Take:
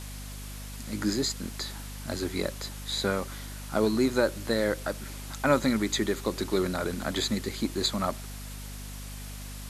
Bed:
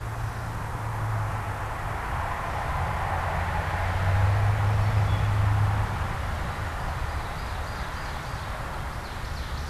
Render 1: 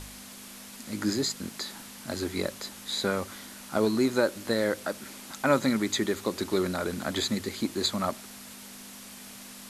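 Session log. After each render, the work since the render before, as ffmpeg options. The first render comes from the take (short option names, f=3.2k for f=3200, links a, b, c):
-af "bandreject=f=50:t=h:w=4,bandreject=f=100:t=h:w=4,bandreject=f=150:t=h:w=4"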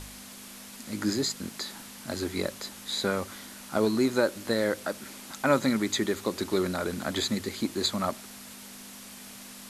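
-af anull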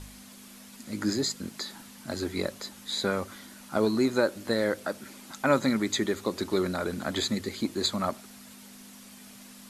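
-af "afftdn=nr=6:nf=-46"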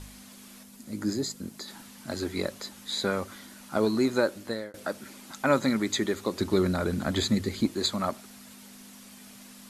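-filter_complex "[0:a]asettb=1/sr,asplit=3[a][b][c];[a]atrim=end=0.634[d];[b]atrim=start=0.63:end=1.68,asetpts=PTS-STARTPTS,afade=t=in:d=0.004:c=qsin,afade=t=out:st=1.046:d=0.004:c=qsin,equalizer=f=2.3k:w=0.34:g=-7[e];[c]atrim=start=1.676[f];[d][e]acrossfade=d=0.004:c1=hsin:c2=qsin[g];[g][f]acrossfade=d=0.004:c1=qsin:c2=hsin,asettb=1/sr,asplit=3[h][i][j];[h]atrim=end=6.404[k];[i]atrim=start=6.4:end=7.68,asetpts=PTS-STARTPTS,afade=t=in:d=0.004:c=qsin,afade=t=out:st=1.276:d=0.004:c=qsin,lowshelf=f=180:g=11.5[l];[j]atrim=start=7.676[m];[k][l]acrossfade=d=0.004:c1=hsin:c2=qsin[n];[n][m]acrossfade=d=0.004:c1=qsin:c2=hsin,asplit=2[o][p];[o]atrim=end=4.74,asetpts=PTS-STARTPTS,afade=t=out:st=4.16:d=0.58:c=qsin[q];[p]atrim=start=4.74,asetpts=PTS-STARTPTS,afade=t=in:d=0.004:c=hsin[r];[q][r]concat=n=2:v=0:a=1"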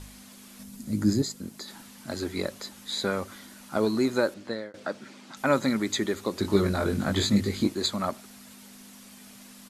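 -filter_complex "[0:a]asettb=1/sr,asplit=3[a][b][c];[a]atrim=end=0.594[d];[b]atrim=start=0.59:end=1.22,asetpts=PTS-STARTPTS,afade=t=in:d=0.004:c=qsin,afade=t=out:st=0.626:d=0.004:c=qsin,bass=f=250:g=12,treble=f=4k:g=3[e];[c]atrim=start=1.216[f];[d][e]acrossfade=d=0.004:c1=hsin:c2=qsin[g];[g][f]acrossfade=d=0.004:c1=qsin:c2=hsin,asettb=1/sr,asplit=3[h][i][j];[h]atrim=end=4.344[k];[i]atrim=start=4.34:end=5.37,asetpts=PTS-STARTPTS,afade=t=in:d=0.004:c=qsin,afade=t=out:st=1.026:d=0.004:c=qsin,highpass=110,lowpass=5.5k[l];[j]atrim=start=5.366[m];[k][l]acrossfade=d=0.004:c1=hsin:c2=qsin[n];[n][m]acrossfade=d=0.004:c1=qsin:c2=hsin,asplit=3[o][p][q];[o]afade=t=out:st=6.43:d=0.02[r];[p]asplit=2[s][t];[t]adelay=20,volume=-2.5dB[u];[s][u]amix=inputs=2:normalize=0,afade=t=in:st=6.43:d=0.02,afade=t=out:st=7.72:d=0.02[v];[q]afade=t=in:st=7.72:d=0.02[w];[r][v][w]amix=inputs=3:normalize=0"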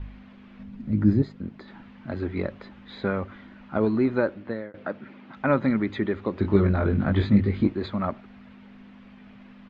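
-af "lowpass=f=2.7k:w=0.5412,lowpass=f=2.7k:w=1.3066,lowshelf=f=150:g=11"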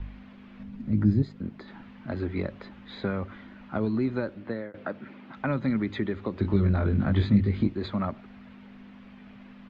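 -filter_complex "[0:a]acrossover=split=220|3000[a][b][c];[b]acompressor=threshold=-29dB:ratio=6[d];[a][d][c]amix=inputs=3:normalize=0"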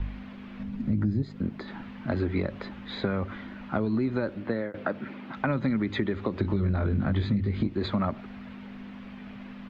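-filter_complex "[0:a]asplit=2[a][b];[b]alimiter=limit=-20dB:level=0:latency=1:release=79,volume=-0.5dB[c];[a][c]amix=inputs=2:normalize=0,acompressor=threshold=-23dB:ratio=5"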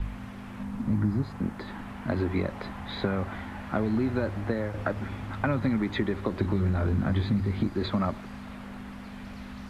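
-filter_complex "[1:a]volume=-14dB[a];[0:a][a]amix=inputs=2:normalize=0"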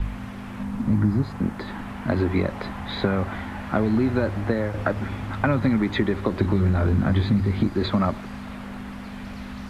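-af "volume=5.5dB"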